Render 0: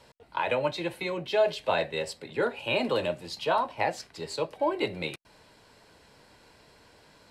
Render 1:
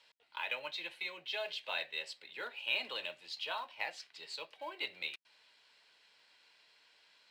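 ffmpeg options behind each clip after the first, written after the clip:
-filter_complex "[0:a]bandpass=f=3100:t=q:w=1.4:csg=0,asplit=2[s0][s1];[s1]acrusher=bits=4:mode=log:mix=0:aa=0.000001,volume=0.335[s2];[s0][s2]amix=inputs=2:normalize=0,volume=0.596"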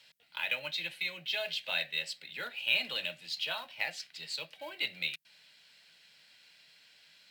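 -af "equalizer=f=160:t=o:w=0.67:g=11,equalizer=f=400:t=o:w=0.67:g=-9,equalizer=f=1000:t=o:w=0.67:g=-11,equalizer=f=16000:t=o:w=0.67:g=11,volume=2"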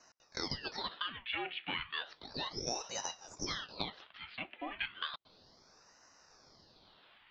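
-af "highpass=f=380:t=q:w=0.5412,highpass=f=380:t=q:w=1.307,lowpass=f=2800:t=q:w=0.5176,lowpass=f=2800:t=q:w=0.7071,lowpass=f=2800:t=q:w=1.932,afreqshift=-67,acompressor=threshold=0.0141:ratio=6,aeval=exprs='val(0)*sin(2*PI*1800*n/s+1800*0.9/0.33*sin(2*PI*0.33*n/s))':c=same,volume=1.88"

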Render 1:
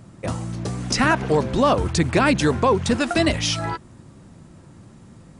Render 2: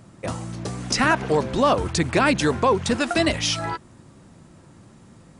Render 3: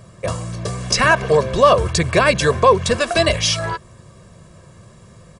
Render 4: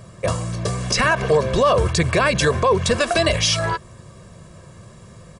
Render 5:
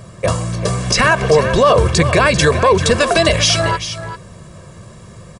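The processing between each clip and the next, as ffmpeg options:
-af "lowshelf=f=250:g=-5"
-af "aecho=1:1:1.8:0.74,volume=1.5"
-af "alimiter=level_in=2.66:limit=0.891:release=50:level=0:latency=1,volume=0.447"
-af "aecho=1:1:392:0.282,volume=1.78"

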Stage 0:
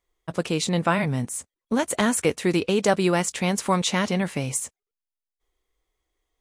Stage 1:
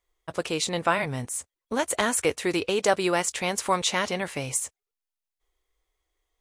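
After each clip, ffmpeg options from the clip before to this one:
-af "equalizer=f=190:t=o:w=1.2:g=-11"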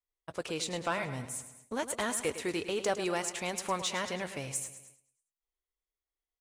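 -filter_complex "[0:a]asoftclip=type=tanh:threshold=0.211,asplit=2[s0][s1];[s1]aecho=0:1:106|212|318|424|530|636:0.251|0.136|0.0732|0.0396|0.0214|0.0115[s2];[s0][s2]amix=inputs=2:normalize=0,agate=range=0.282:threshold=0.00316:ratio=16:detection=peak,volume=0.422"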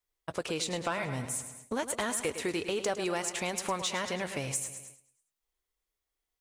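-af "acompressor=threshold=0.0126:ratio=2.5,volume=2.11"

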